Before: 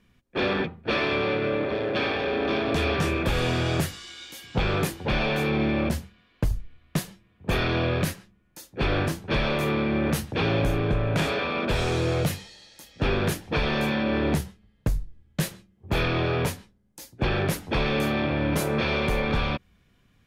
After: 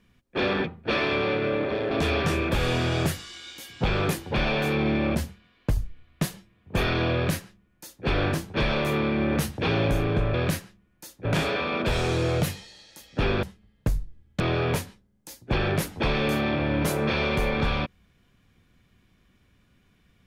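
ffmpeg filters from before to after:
ffmpeg -i in.wav -filter_complex "[0:a]asplit=6[link_01][link_02][link_03][link_04][link_05][link_06];[link_01]atrim=end=1.912[link_07];[link_02]atrim=start=2.648:end=11.082[link_08];[link_03]atrim=start=7.878:end=8.792[link_09];[link_04]atrim=start=11.078:end=13.262[link_10];[link_05]atrim=start=14.428:end=15.402[link_11];[link_06]atrim=start=16.108[link_12];[link_07][link_08]acrossfade=duration=0.004:curve1=hsin:curve2=hsin[link_13];[link_13][link_09]acrossfade=duration=0.004:curve1=hsin:curve2=hsin[link_14];[link_14][link_10]acrossfade=duration=0.004:curve1=hsin:curve2=hsin[link_15];[link_15][link_11]acrossfade=duration=0.004:curve1=hsin:curve2=hsin[link_16];[link_16][link_12]acrossfade=duration=0.004:curve1=hsin:curve2=hsin" out.wav

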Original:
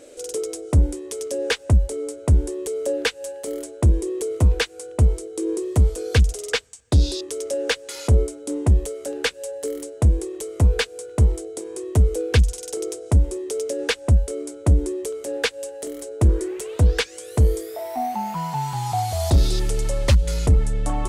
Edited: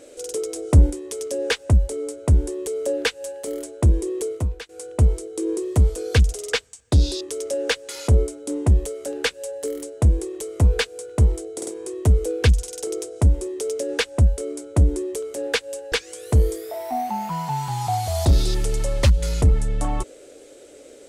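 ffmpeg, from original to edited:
ffmpeg -i in.wav -filter_complex "[0:a]asplit=7[link_01][link_02][link_03][link_04][link_05][link_06][link_07];[link_01]atrim=end=0.562[link_08];[link_02]atrim=start=0.558:end=0.902,asetpts=PTS-STARTPTS,volume=3.5dB[link_09];[link_03]atrim=start=0.898:end=4.69,asetpts=PTS-STARTPTS,afade=type=out:start_time=3.362:duration=0.43:curve=qua:silence=0.158489[link_10];[link_04]atrim=start=4.69:end=11.622,asetpts=PTS-STARTPTS,afade=type=in:duration=0.004:curve=hsin:silence=0.158489[link_11];[link_05]atrim=start=11.568:end=11.622[link_12];[link_06]atrim=start=11.568:end=15.822[link_13];[link_07]atrim=start=16.968[link_14];[link_08][link_09]acrossfade=duration=0.004:curve1=hsin:curve2=hsin[link_15];[link_10][link_11]concat=n=2:v=0:a=1[link_16];[link_15][link_16]acrossfade=duration=0.004:curve1=hsin:curve2=hsin[link_17];[link_17][link_12]acrossfade=duration=0.004:curve1=hsin:curve2=hsin[link_18];[link_18][link_13]acrossfade=duration=0.004:curve1=hsin:curve2=hsin[link_19];[link_19][link_14]acrossfade=duration=0.004:curve1=hsin:curve2=hsin" out.wav

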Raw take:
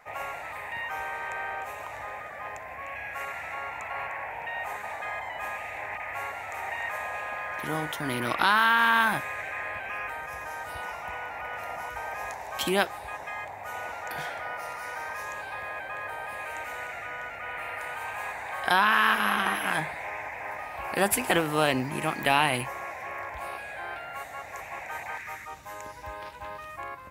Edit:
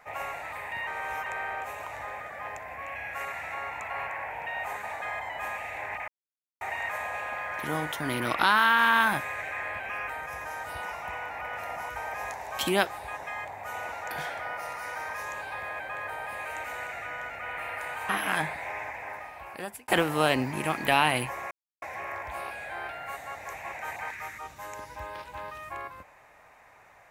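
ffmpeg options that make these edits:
ffmpeg -i in.wav -filter_complex "[0:a]asplit=8[link_01][link_02][link_03][link_04][link_05][link_06][link_07][link_08];[link_01]atrim=end=0.872[link_09];[link_02]atrim=start=0.868:end=1.262,asetpts=PTS-STARTPTS,areverse[link_10];[link_03]atrim=start=1.258:end=6.08,asetpts=PTS-STARTPTS,afade=type=out:start_time=4.818:duration=0.004:curve=hsin[link_11];[link_04]atrim=start=6.08:end=6.61,asetpts=PTS-STARTPTS,volume=0[link_12];[link_05]atrim=start=6.61:end=18.092,asetpts=PTS-STARTPTS,afade=type=in:duration=0.004:curve=hsin[link_13];[link_06]atrim=start=19.468:end=21.26,asetpts=PTS-STARTPTS,afade=type=out:start_time=0.742:duration=1.05[link_14];[link_07]atrim=start=21.26:end=22.89,asetpts=PTS-STARTPTS,afade=type=in:duration=0.004:curve=hsin,afade=type=out:start_time=1.626:duration=0.004:curve=hsin,apad=pad_dur=0.31[link_15];[link_08]atrim=start=22.89,asetpts=PTS-STARTPTS,afade=type=in:duration=0.004:curve=hsin[link_16];[link_09][link_10]acrossfade=duration=0.004:curve1=hsin:curve2=hsin[link_17];[link_11][link_12][link_13]concat=n=3:v=0:a=1[link_18];[link_17][link_18]acrossfade=duration=0.004:curve1=hsin:curve2=hsin[link_19];[link_14][link_15][link_16]concat=n=3:v=0:a=1[link_20];[link_19][link_20]acrossfade=duration=0.004:curve1=hsin:curve2=hsin" out.wav

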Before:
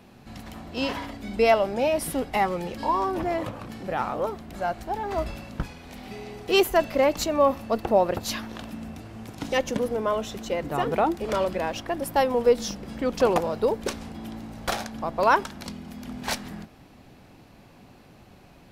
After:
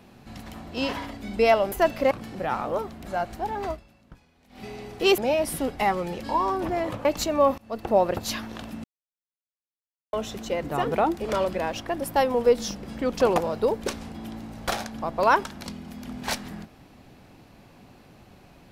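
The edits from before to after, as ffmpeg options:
ffmpeg -i in.wav -filter_complex "[0:a]asplit=10[link_01][link_02][link_03][link_04][link_05][link_06][link_07][link_08][link_09][link_10];[link_01]atrim=end=1.722[link_11];[link_02]atrim=start=6.658:end=7.052[link_12];[link_03]atrim=start=3.588:end=5.28,asetpts=PTS-STARTPTS,afade=type=out:start_time=1.532:duration=0.16:silence=0.11885[link_13];[link_04]atrim=start=5.28:end=5.97,asetpts=PTS-STARTPTS,volume=-18.5dB[link_14];[link_05]atrim=start=5.97:end=6.662,asetpts=PTS-STARTPTS,afade=type=in:duration=0.16:silence=0.11885[link_15];[link_06]atrim=start=1.718:end=3.592[link_16];[link_07]atrim=start=7.048:end=7.58,asetpts=PTS-STARTPTS,afade=type=out:start_time=0.528:duration=0.004:curve=hsin:silence=0.0668344[link_17];[link_08]atrim=start=7.58:end=8.84,asetpts=PTS-STARTPTS,afade=type=in:duration=0.39:silence=0.0668344,afade=type=out:start_time=1.256:duration=0.004:curve=hsin[link_18];[link_09]atrim=start=8.84:end=10.13,asetpts=PTS-STARTPTS,volume=0[link_19];[link_10]atrim=start=10.13,asetpts=PTS-STARTPTS,afade=type=in:duration=0.004:curve=hsin[link_20];[link_11][link_12]acrossfade=duration=0.004:curve1=hsin:curve2=hsin[link_21];[link_13][link_14][link_15]concat=n=3:v=0:a=1[link_22];[link_21][link_22]acrossfade=duration=0.004:curve1=hsin:curve2=hsin[link_23];[link_23][link_16]acrossfade=duration=0.004:curve1=hsin:curve2=hsin[link_24];[link_17][link_18][link_19][link_20]concat=n=4:v=0:a=1[link_25];[link_24][link_25]acrossfade=duration=0.004:curve1=hsin:curve2=hsin" out.wav

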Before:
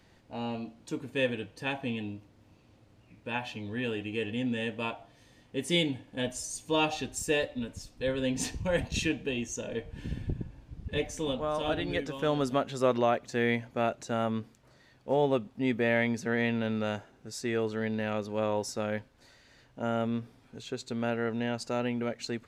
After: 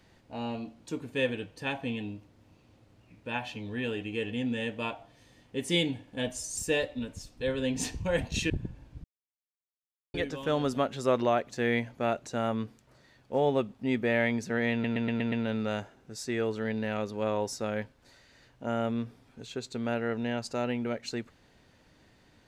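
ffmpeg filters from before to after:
ffmpeg -i in.wav -filter_complex "[0:a]asplit=10[link_01][link_02][link_03][link_04][link_05][link_06][link_07][link_08][link_09][link_10];[link_01]atrim=end=6.572[link_11];[link_02]atrim=start=7.168:end=9.102[link_12];[link_03]atrim=start=10.258:end=10.8,asetpts=PTS-STARTPTS,afade=type=out:start_time=0.538:duration=0.004:curve=hsin[link_13];[link_04]atrim=start=10.8:end=11.9,asetpts=PTS-STARTPTS,volume=0[link_14];[link_05]atrim=start=11.9:end=16.602,asetpts=PTS-STARTPTS,afade=type=in:duration=0.004:curve=hsin[link_15];[link_06]atrim=start=16.478:end=16.602[link_16];[link_07]atrim=start=16.478:end=16.602[link_17];[link_08]atrim=start=16.478:end=16.602[link_18];[link_09]atrim=start=16.478:end=16.602[link_19];[link_10]atrim=start=16.478[link_20];[link_11][link_12]acrossfade=duration=0.004:curve1=hsin:curve2=hsin[link_21];[link_13][link_14][link_15]concat=n=3:v=0:a=1[link_22];[link_21][link_22]acrossfade=duration=0.004:curve1=hsin:curve2=hsin[link_23];[link_23][link_16]acrossfade=duration=0.004:curve1=hsin:curve2=hsin[link_24];[link_24][link_17]acrossfade=duration=0.004:curve1=hsin:curve2=hsin[link_25];[link_25][link_18]acrossfade=duration=0.004:curve1=hsin:curve2=hsin[link_26];[link_26][link_19]acrossfade=duration=0.004:curve1=hsin:curve2=hsin[link_27];[link_27][link_20]acrossfade=duration=0.004:curve1=hsin:curve2=hsin" out.wav

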